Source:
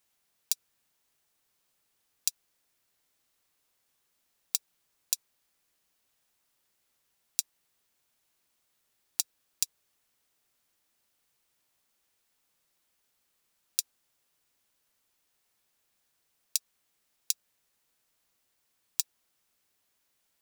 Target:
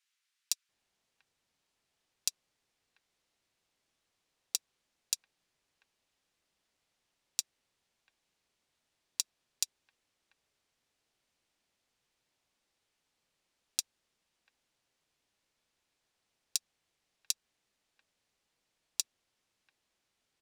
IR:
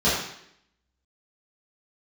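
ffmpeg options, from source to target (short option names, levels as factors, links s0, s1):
-filter_complex "[0:a]acrossover=split=1300[s0][s1];[s0]adelay=690[s2];[s2][s1]amix=inputs=2:normalize=0,adynamicsmooth=sensitivity=5.5:basefreq=7100"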